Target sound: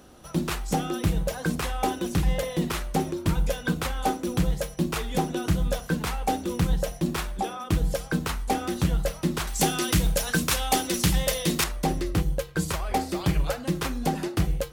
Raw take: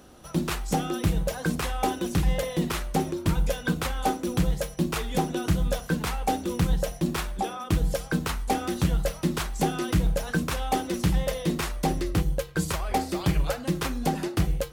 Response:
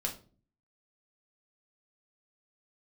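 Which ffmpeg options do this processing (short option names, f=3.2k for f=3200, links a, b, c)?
-filter_complex "[0:a]asettb=1/sr,asplit=3[a][b][c];[a]atrim=end=9.474[d];[b]atrim=start=9.47:end=11.64,asetpts=PTS-STARTPTS,afade=t=in:d=0.004:c=qsin,afade=t=out:st=2.166:d=0.004:c=qsin,highshelf=f=2.2k:g=11.5[e];[c]atrim=start=11.636[f];[d][e]acrossfade=d=0.004:c1=hsin:c2=qsin[g];[g][f]acrossfade=d=0.004:c1=qsin:c2=hsin"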